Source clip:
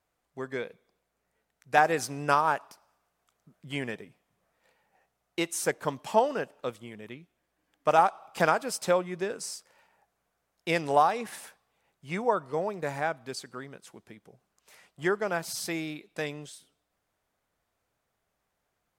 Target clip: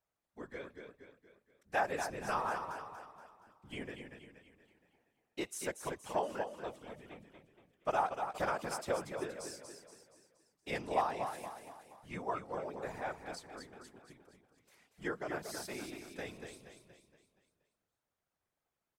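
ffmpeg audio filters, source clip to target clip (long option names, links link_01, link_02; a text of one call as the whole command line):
ffmpeg -i in.wav -af "aecho=1:1:236|472|708|944|1180|1416:0.447|0.21|0.0987|0.0464|0.0218|0.0102,afftfilt=real='hypot(re,im)*cos(2*PI*random(0))':imag='hypot(re,im)*sin(2*PI*random(1))':win_size=512:overlap=0.75,volume=-5dB" out.wav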